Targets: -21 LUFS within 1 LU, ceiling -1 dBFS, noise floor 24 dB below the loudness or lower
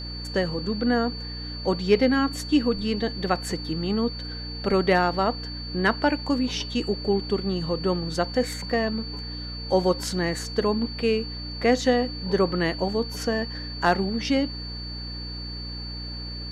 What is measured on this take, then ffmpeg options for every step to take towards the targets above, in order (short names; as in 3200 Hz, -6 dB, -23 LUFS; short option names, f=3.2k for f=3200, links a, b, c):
hum 60 Hz; harmonics up to 300 Hz; hum level -33 dBFS; steady tone 4500 Hz; tone level -36 dBFS; loudness -25.5 LUFS; peak -8.0 dBFS; loudness target -21.0 LUFS
-> -af "bandreject=f=60:t=h:w=4,bandreject=f=120:t=h:w=4,bandreject=f=180:t=h:w=4,bandreject=f=240:t=h:w=4,bandreject=f=300:t=h:w=4"
-af "bandreject=f=4.5k:w=30"
-af "volume=4.5dB"